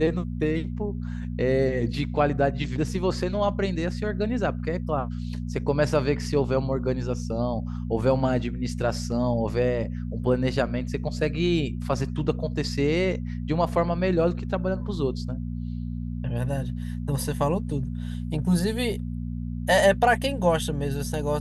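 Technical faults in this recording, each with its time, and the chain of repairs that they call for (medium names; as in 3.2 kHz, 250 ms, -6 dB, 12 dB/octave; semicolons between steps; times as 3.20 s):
hum 60 Hz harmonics 4 -31 dBFS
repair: de-hum 60 Hz, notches 4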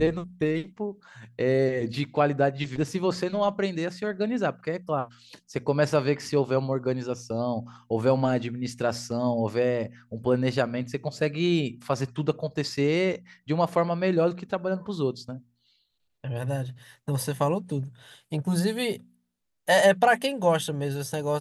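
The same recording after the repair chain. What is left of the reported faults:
nothing left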